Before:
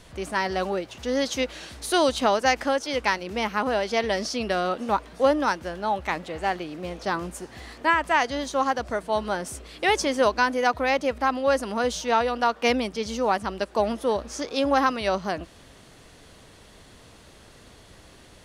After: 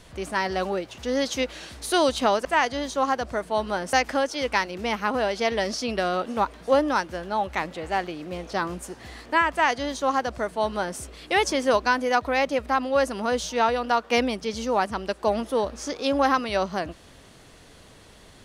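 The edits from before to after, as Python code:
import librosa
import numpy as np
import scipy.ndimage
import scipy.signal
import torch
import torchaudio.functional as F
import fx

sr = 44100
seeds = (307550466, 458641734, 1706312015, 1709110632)

y = fx.edit(x, sr, fx.duplicate(start_s=8.03, length_s=1.48, to_s=2.45), tone=tone)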